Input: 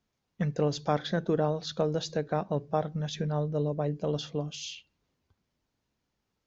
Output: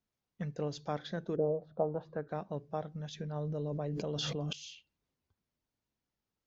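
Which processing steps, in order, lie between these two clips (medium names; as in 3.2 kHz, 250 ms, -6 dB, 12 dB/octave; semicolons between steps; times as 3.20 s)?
1.35–2.27 s: resonant low-pass 410 Hz -> 1.4 kHz, resonance Q 3.6; 3.36–4.53 s: level flattener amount 100%; trim -9 dB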